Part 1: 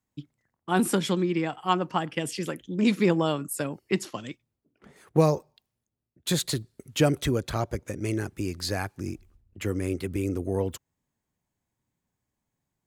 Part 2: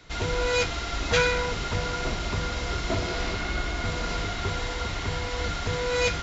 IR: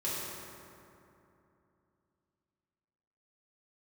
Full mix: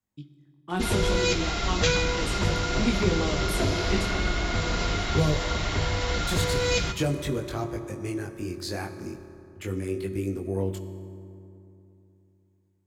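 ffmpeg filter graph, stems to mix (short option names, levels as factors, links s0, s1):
-filter_complex "[0:a]flanger=delay=20:depth=4.4:speed=0.39,volume=0.794,asplit=2[s0][s1];[s1]volume=0.224[s2];[1:a]adelay=700,volume=1.26,asplit=2[s3][s4];[s4]volume=0.178[s5];[2:a]atrim=start_sample=2205[s6];[s2][s5]amix=inputs=2:normalize=0[s7];[s7][s6]afir=irnorm=-1:irlink=0[s8];[s0][s3][s8]amix=inputs=3:normalize=0,acrossover=split=430|3000[s9][s10][s11];[s10]acompressor=threshold=0.0355:ratio=6[s12];[s9][s12][s11]amix=inputs=3:normalize=0"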